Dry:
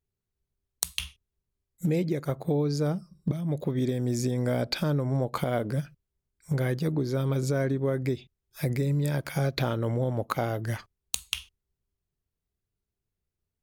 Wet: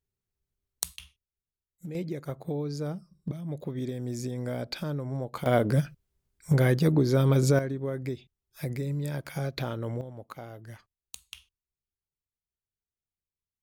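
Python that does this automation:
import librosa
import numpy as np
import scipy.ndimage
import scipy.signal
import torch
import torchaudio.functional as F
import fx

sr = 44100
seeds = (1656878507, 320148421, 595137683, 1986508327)

y = fx.gain(x, sr, db=fx.steps((0.0, -2.5), (0.96, -13.0), (1.95, -6.0), (5.46, 5.0), (7.59, -5.0), (10.01, -14.0)))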